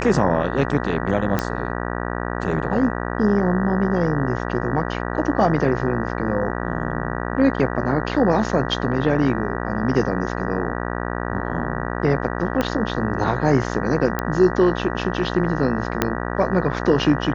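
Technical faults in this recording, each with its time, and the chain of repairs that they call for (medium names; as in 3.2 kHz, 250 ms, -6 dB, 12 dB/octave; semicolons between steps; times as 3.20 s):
buzz 60 Hz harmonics 32 -26 dBFS
1.39 s: pop -7 dBFS
12.61 s: pop -8 dBFS
14.19 s: pop -9 dBFS
16.02 s: pop -3 dBFS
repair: de-click; de-hum 60 Hz, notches 32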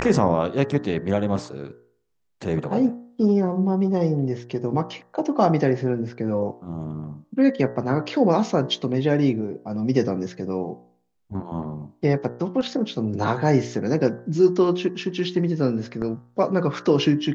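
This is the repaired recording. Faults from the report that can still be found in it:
1.39 s: pop
12.61 s: pop
16.02 s: pop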